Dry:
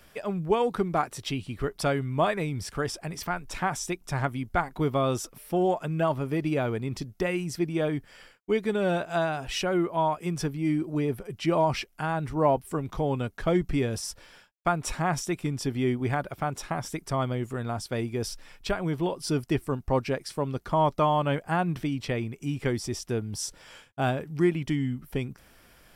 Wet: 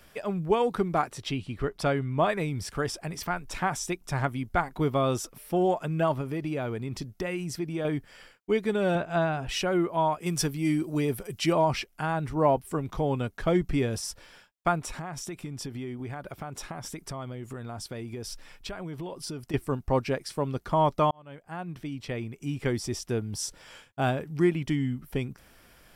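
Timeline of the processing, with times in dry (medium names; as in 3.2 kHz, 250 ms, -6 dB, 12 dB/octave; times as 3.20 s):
1.10–2.28 s: treble shelf 10 kHz -> 5.5 kHz -9.5 dB
6.21–7.85 s: compression 2:1, threshold -30 dBFS
8.95–9.49 s: tone controls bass +5 dB, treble -9 dB
10.26–11.53 s: treble shelf 3.5 kHz +11.5 dB
14.79–19.54 s: compression, threshold -33 dBFS
21.11–22.78 s: fade in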